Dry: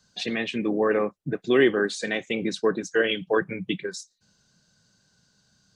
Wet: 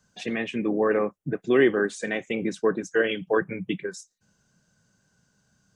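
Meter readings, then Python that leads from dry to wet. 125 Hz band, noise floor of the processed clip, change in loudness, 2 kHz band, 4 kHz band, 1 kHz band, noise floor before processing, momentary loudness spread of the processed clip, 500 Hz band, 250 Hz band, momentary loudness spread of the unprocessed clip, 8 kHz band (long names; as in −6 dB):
0.0 dB, −70 dBFS, −0.5 dB, −1.0 dB, −6.5 dB, −0.5 dB, −69 dBFS, 11 LU, 0.0 dB, 0.0 dB, 10 LU, −3.0 dB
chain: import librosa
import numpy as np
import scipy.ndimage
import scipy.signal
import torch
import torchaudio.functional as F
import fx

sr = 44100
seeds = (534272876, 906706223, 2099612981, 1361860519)

y = fx.peak_eq(x, sr, hz=4200.0, db=-13.0, octaves=0.68)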